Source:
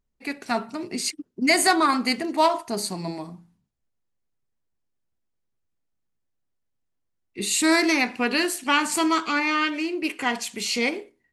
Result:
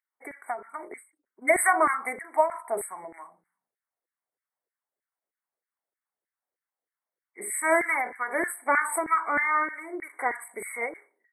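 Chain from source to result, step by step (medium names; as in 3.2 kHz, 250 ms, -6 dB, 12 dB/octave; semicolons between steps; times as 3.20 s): LFO high-pass saw down 3.2 Hz 420–2000 Hz; brick-wall FIR band-stop 2.3–7.8 kHz; endings held to a fixed fall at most 170 dB/s; trim -2.5 dB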